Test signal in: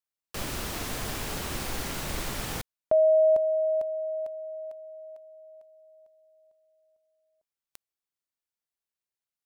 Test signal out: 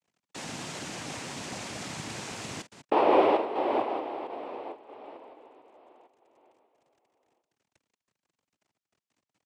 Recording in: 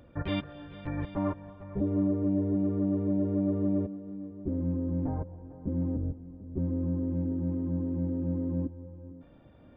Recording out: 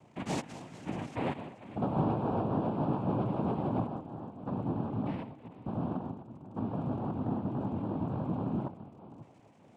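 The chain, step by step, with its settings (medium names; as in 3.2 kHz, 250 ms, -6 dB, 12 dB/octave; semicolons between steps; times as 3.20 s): chunks repeated in reverse 148 ms, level -12 dB; crackle 42 per s -43 dBFS; noise-vocoded speech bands 4; trim -2.5 dB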